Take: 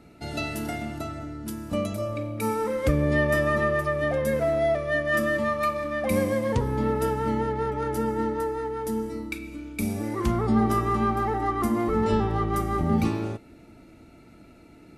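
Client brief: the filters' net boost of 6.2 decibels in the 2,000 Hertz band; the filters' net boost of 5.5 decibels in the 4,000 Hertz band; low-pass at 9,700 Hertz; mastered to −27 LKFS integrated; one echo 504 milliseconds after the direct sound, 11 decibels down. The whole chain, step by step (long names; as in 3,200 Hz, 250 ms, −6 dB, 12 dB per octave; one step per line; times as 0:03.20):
low-pass filter 9,700 Hz
parametric band 2,000 Hz +6 dB
parametric band 4,000 Hz +5 dB
single-tap delay 504 ms −11 dB
level −2.5 dB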